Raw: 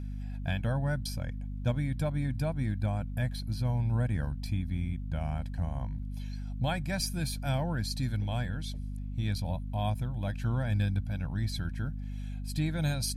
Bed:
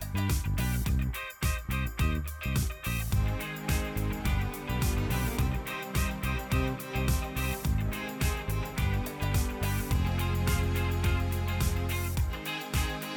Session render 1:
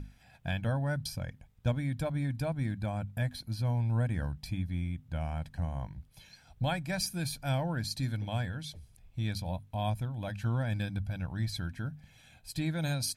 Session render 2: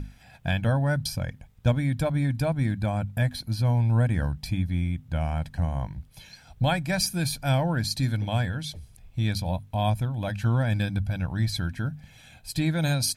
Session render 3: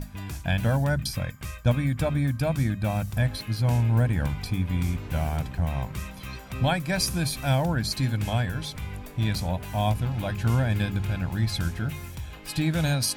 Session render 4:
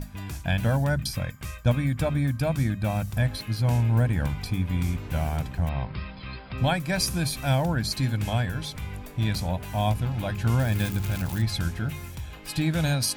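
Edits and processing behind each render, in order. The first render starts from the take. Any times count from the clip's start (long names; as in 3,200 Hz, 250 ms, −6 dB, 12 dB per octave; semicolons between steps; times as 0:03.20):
mains-hum notches 50/100/150/200/250 Hz
level +7.5 dB
mix in bed −7 dB
0:05.69–0:06.58: linear-phase brick-wall low-pass 5,300 Hz; 0:10.59–0:11.42: spike at every zero crossing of −26 dBFS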